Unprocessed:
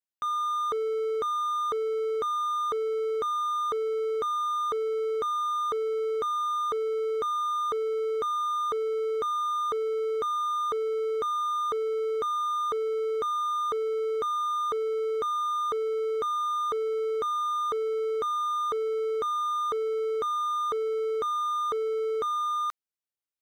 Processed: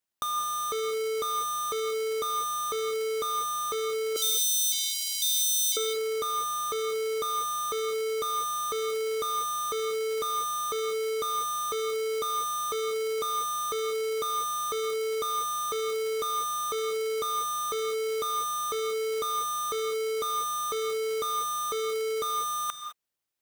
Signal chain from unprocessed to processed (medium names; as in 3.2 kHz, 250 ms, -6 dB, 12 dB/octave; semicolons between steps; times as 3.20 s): square wave that keeps the level; 4.16–5.77 s: inverse Chebyshev high-pass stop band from 1.3 kHz, stop band 50 dB; compressor with a negative ratio -30 dBFS, ratio -1; gated-style reverb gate 230 ms rising, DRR 7.5 dB